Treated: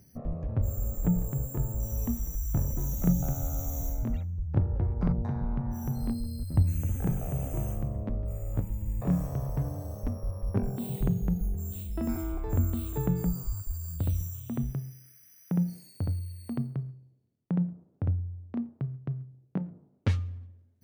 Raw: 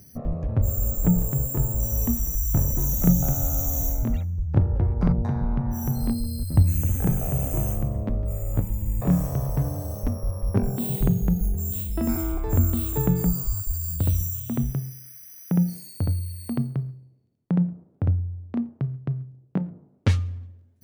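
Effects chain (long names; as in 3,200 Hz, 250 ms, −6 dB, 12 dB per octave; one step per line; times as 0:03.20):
high-shelf EQ 5,200 Hz −7 dB
level −6 dB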